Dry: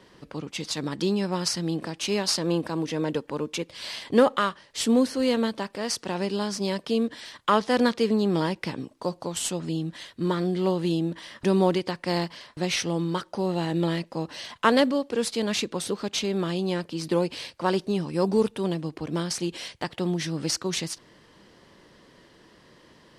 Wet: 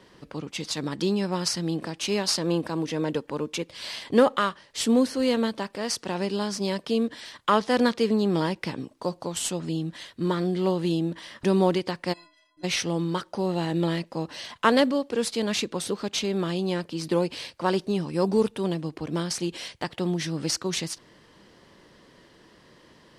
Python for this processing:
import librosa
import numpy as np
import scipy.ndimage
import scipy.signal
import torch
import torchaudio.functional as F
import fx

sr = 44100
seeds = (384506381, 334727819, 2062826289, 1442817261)

y = fx.stiff_resonator(x, sr, f0_hz=300.0, decay_s=0.68, stiffness=0.03, at=(12.12, 12.63), fade=0.02)